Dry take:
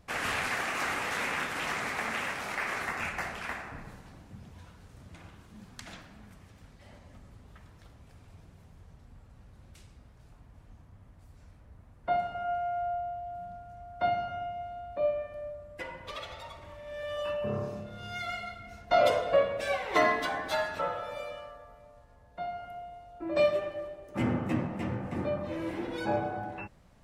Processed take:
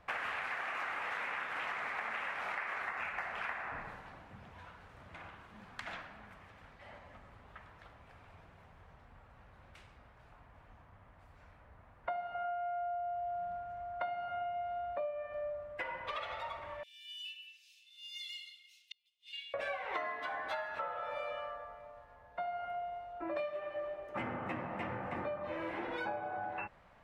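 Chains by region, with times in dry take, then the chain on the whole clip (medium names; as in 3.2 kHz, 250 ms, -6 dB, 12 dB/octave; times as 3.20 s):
16.83–19.54 s: steep high-pass 2.8 kHz 48 dB/octave + treble shelf 4.6 kHz +9.5 dB + inverted gate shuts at -32 dBFS, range -41 dB
whole clip: three-band isolator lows -14 dB, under 580 Hz, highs -19 dB, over 2.9 kHz; compression 12:1, threshold -42 dBFS; trim +6.5 dB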